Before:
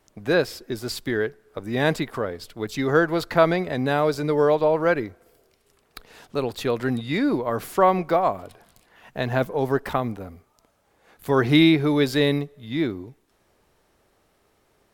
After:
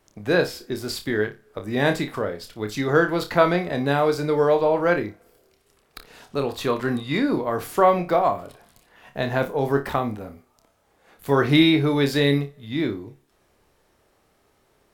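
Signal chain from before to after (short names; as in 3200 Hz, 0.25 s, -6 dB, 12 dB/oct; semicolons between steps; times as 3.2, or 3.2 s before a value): 6.47–7.2 bell 1100 Hz +10 dB 0.23 oct; flutter echo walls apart 4.9 m, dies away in 0.23 s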